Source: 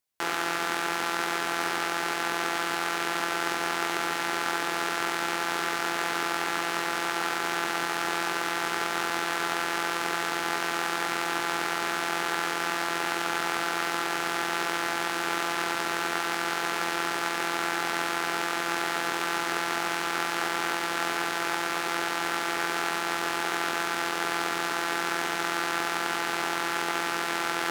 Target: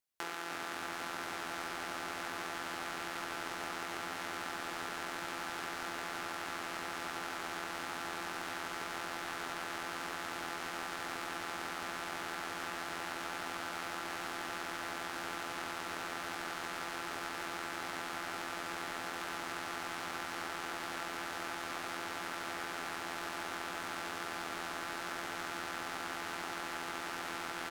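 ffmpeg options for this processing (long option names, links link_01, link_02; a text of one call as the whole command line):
ffmpeg -i in.wav -filter_complex "[0:a]asplit=2[link_01][link_02];[link_02]asplit=7[link_03][link_04][link_05][link_06][link_07][link_08][link_09];[link_03]adelay=299,afreqshift=-79,volume=-5.5dB[link_10];[link_04]adelay=598,afreqshift=-158,volume=-11.2dB[link_11];[link_05]adelay=897,afreqshift=-237,volume=-16.9dB[link_12];[link_06]adelay=1196,afreqshift=-316,volume=-22.5dB[link_13];[link_07]adelay=1495,afreqshift=-395,volume=-28.2dB[link_14];[link_08]adelay=1794,afreqshift=-474,volume=-33.9dB[link_15];[link_09]adelay=2093,afreqshift=-553,volume=-39.6dB[link_16];[link_10][link_11][link_12][link_13][link_14][link_15][link_16]amix=inputs=7:normalize=0[link_17];[link_01][link_17]amix=inputs=2:normalize=0,acompressor=threshold=-32dB:ratio=3,volume=-6dB" out.wav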